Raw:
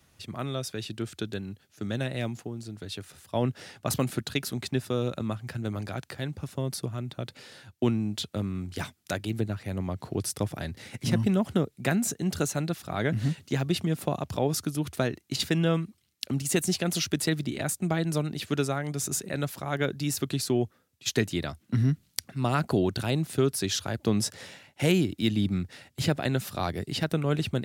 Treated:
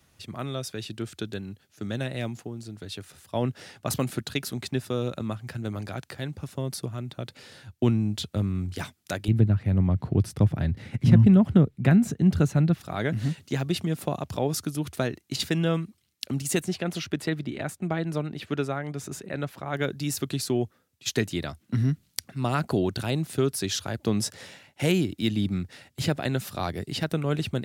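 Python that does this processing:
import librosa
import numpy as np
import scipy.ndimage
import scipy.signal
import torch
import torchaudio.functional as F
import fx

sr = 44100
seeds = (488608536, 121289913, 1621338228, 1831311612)

y = fx.low_shelf(x, sr, hz=110.0, db=12.0, at=(7.43, 8.75))
y = fx.bass_treble(y, sr, bass_db=12, treble_db=-11, at=(9.28, 12.81))
y = fx.bass_treble(y, sr, bass_db=-2, treble_db=-12, at=(16.6, 19.74))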